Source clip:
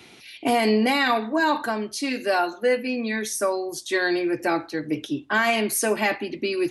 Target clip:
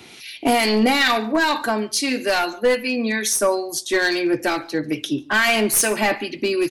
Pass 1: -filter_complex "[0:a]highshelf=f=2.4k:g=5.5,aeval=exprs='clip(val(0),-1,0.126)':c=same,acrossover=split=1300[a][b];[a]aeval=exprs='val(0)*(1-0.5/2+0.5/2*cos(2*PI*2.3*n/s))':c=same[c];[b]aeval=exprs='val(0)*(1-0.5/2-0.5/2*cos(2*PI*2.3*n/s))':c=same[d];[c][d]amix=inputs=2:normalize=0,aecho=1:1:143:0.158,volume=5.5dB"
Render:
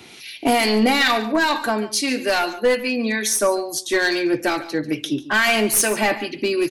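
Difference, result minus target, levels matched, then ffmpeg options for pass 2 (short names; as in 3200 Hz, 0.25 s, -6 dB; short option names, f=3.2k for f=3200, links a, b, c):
echo-to-direct +9 dB
-filter_complex "[0:a]highshelf=f=2.4k:g=5.5,aeval=exprs='clip(val(0),-1,0.126)':c=same,acrossover=split=1300[a][b];[a]aeval=exprs='val(0)*(1-0.5/2+0.5/2*cos(2*PI*2.3*n/s))':c=same[c];[b]aeval=exprs='val(0)*(1-0.5/2-0.5/2*cos(2*PI*2.3*n/s))':c=same[d];[c][d]amix=inputs=2:normalize=0,aecho=1:1:143:0.0562,volume=5.5dB"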